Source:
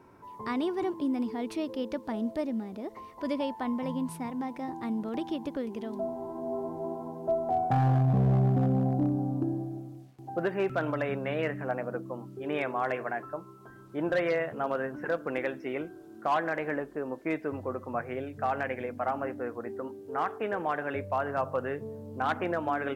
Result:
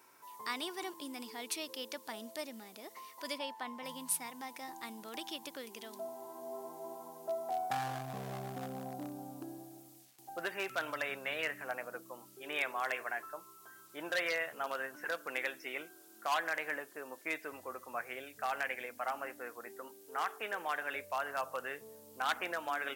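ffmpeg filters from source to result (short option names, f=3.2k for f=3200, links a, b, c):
-filter_complex "[0:a]asplit=3[a][b][c];[a]afade=t=out:st=3.37:d=0.02[d];[b]lowpass=f=3k:p=1,afade=t=in:st=3.37:d=0.02,afade=t=out:st=3.84:d=0.02[e];[c]afade=t=in:st=3.84:d=0.02[f];[d][e][f]amix=inputs=3:normalize=0,aderivative,volume=11.5dB"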